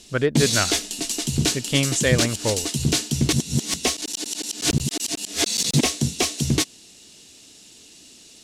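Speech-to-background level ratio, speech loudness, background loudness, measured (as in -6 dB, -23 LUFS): -1.5 dB, -24.0 LUFS, -22.5 LUFS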